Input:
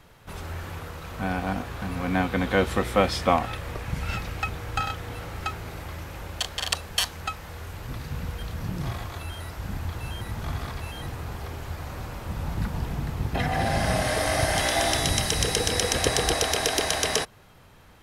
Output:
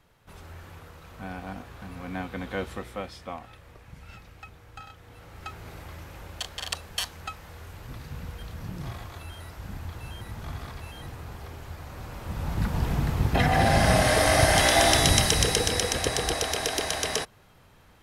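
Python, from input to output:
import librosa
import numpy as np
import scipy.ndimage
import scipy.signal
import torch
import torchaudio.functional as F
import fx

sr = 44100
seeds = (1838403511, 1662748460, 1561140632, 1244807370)

y = fx.gain(x, sr, db=fx.line((2.64, -9.5), (3.17, -16.5), (4.93, -16.5), (5.68, -5.5), (11.89, -5.5), (12.91, 4.0), (15.16, 4.0), (16.04, -3.5)))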